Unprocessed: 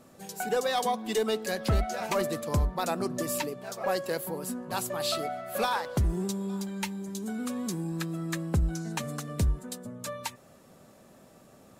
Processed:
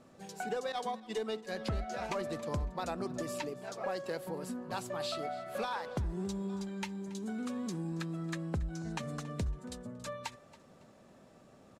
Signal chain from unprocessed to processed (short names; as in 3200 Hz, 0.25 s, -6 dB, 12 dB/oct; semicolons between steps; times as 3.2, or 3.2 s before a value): 0.72–1.55 expander -26 dBFS; compressor 4:1, threshold -29 dBFS, peak gain reduction 7 dB; air absorption 61 m; feedback echo 0.278 s, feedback 31%, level -19.5 dB; gain -3.5 dB